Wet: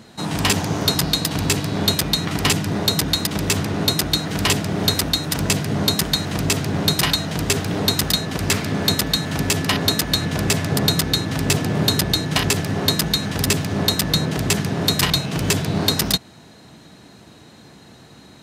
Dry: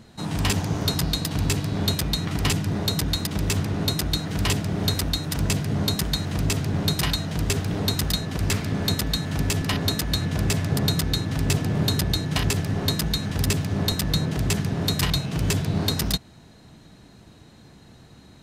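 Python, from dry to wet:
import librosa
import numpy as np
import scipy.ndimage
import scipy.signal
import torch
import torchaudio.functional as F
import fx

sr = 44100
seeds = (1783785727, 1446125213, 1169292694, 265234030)

y = fx.highpass(x, sr, hz=210.0, slope=6)
y = y * 10.0 ** (7.0 / 20.0)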